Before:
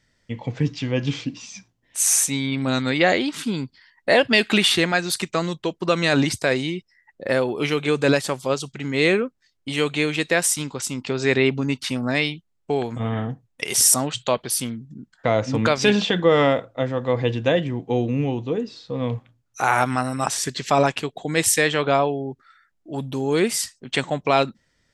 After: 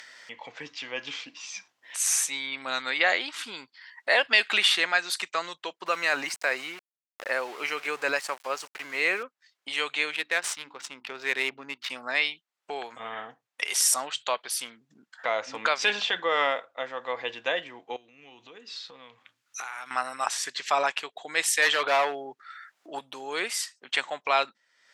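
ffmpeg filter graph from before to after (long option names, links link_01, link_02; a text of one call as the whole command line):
ffmpeg -i in.wav -filter_complex "[0:a]asettb=1/sr,asplit=3[link_01][link_02][link_03];[link_01]atrim=end=5.864[link_04];[link_02]atrim=start=5.86:end=9.23,asetpts=PTS-STARTPTS,afade=type=in:duration=0.004:curve=qsin,afade=type=out:start_time=3.366:duration=0.004:curve=qsin,equalizer=frequency=3500:width=4.9:gain=-14,aeval=exprs='val(0)*gte(abs(val(0)),0.02)':channel_layout=same[link_05];[link_03]atrim=start=9.226[link_06];[link_04][link_05]acrossfade=duration=0.004:curve1=hsin:curve2=qsin[link_07];[link_07][link_06]acrossfade=duration=0.004:curve1=qsin:curve2=hsin,asettb=1/sr,asplit=3[link_08][link_09][link_10];[link_08]atrim=end=10.114[link_11];[link_09]atrim=start=10.11:end=11.9,asetpts=PTS-STARTPTS,afade=type=in:duration=0.004:curve=qsin,afade=type=out:start_time=1.786:duration=0.004:curve=qsin,equalizer=frequency=960:width_type=o:width=2.3:gain=-4,bandreject=frequency=60:width_type=h:width=6,bandreject=frequency=120:width_type=h:width=6,bandreject=frequency=180:width_type=h:width=6,bandreject=frequency=240:width_type=h:width=6,bandreject=frequency=300:width_type=h:width=6,bandreject=frequency=360:width_type=h:width=6,adynamicsmooth=sensitivity=3:basefreq=1700[link_12];[link_10]atrim=start=11.896[link_13];[link_11][link_12]acrossfade=duration=0.004:curve1=hsin:curve2=qsin[link_14];[link_14][link_13]acrossfade=duration=0.004:curve1=qsin:curve2=hsin,asettb=1/sr,asplit=3[link_15][link_16][link_17];[link_15]atrim=end=17.964[link_18];[link_16]atrim=start=17.96:end=19.91,asetpts=PTS-STARTPTS,afade=type=in:duration=0.004:curve=qsin,afade=type=out:start_time=1.946:duration=0.004:curve=qsin,equalizer=frequency=680:width=0.74:gain=-10,acompressor=threshold=-34dB:ratio=10:attack=3.2:release=140:knee=1:detection=peak[link_19];[link_17]atrim=start=19.906[link_20];[link_18][link_19]acrossfade=duration=0.004:curve1=hsin:curve2=qsin[link_21];[link_21][link_20]acrossfade=duration=0.004:curve1=qsin:curve2=hsin,asettb=1/sr,asplit=3[link_22][link_23][link_24];[link_22]atrim=end=21.624[link_25];[link_23]atrim=start=21.62:end=22.99,asetpts=PTS-STARTPTS,afade=type=in:duration=0.004:curve=qsin,afade=type=out:start_time=1.366:duration=0.004:curve=qsin,acontrast=57,asoftclip=type=hard:threshold=-12dB[link_26];[link_24]atrim=start=22.986[link_27];[link_25][link_26]acrossfade=duration=0.004:curve1=hsin:curve2=qsin[link_28];[link_28][link_27]acrossfade=duration=0.004:curve1=qsin:curve2=hsin,acompressor=mode=upward:threshold=-25dB:ratio=2.5,highpass=1000,aemphasis=mode=reproduction:type=cd" out.wav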